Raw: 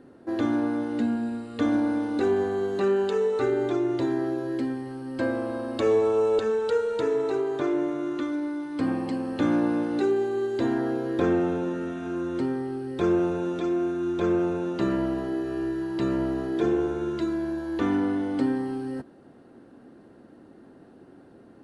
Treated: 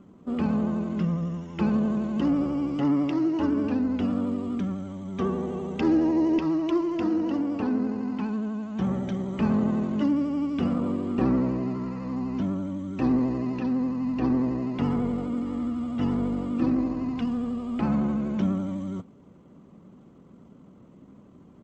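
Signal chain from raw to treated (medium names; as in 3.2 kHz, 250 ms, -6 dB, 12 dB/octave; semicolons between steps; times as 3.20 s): pitch shift -5.5 st; vibrato 12 Hz 53 cents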